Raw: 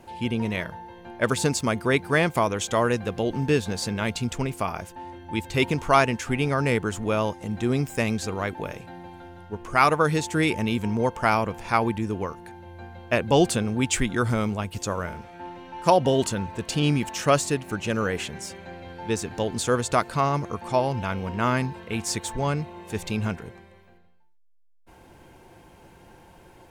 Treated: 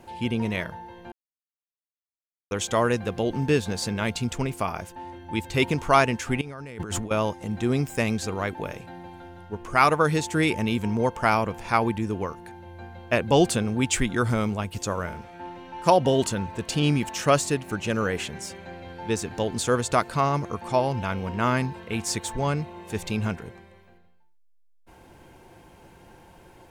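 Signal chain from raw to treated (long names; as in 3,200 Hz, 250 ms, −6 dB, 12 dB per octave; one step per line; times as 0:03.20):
0:01.12–0:02.51: silence
0:06.41–0:07.11: compressor whose output falls as the input rises −35 dBFS, ratio −1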